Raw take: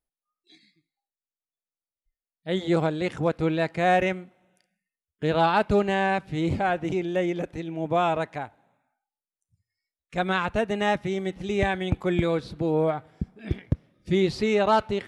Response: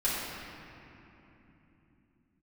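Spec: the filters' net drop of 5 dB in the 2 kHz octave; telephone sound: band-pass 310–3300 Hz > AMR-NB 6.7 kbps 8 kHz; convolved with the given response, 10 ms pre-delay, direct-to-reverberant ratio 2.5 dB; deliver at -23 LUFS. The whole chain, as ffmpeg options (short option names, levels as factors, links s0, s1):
-filter_complex "[0:a]equalizer=f=2000:t=o:g=-6,asplit=2[s0][s1];[1:a]atrim=start_sample=2205,adelay=10[s2];[s1][s2]afir=irnorm=-1:irlink=0,volume=0.251[s3];[s0][s3]amix=inputs=2:normalize=0,highpass=310,lowpass=3300,volume=1.68" -ar 8000 -c:a libopencore_amrnb -b:a 6700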